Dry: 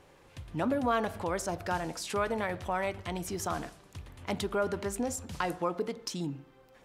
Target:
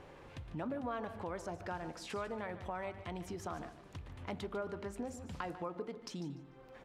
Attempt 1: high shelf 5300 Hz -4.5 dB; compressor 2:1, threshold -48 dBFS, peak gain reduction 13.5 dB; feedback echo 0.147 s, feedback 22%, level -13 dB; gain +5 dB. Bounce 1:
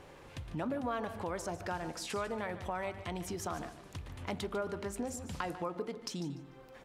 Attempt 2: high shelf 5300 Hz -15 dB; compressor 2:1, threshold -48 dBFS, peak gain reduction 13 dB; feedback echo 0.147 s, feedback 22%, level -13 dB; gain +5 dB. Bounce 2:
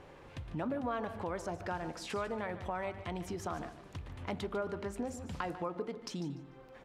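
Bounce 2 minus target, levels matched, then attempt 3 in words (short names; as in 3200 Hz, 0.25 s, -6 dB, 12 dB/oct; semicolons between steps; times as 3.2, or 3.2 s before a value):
compressor: peak gain reduction -3.5 dB
high shelf 5300 Hz -15 dB; compressor 2:1, threshold -55 dBFS, peak gain reduction 16.5 dB; feedback echo 0.147 s, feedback 22%, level -13 dB; gain +5 dB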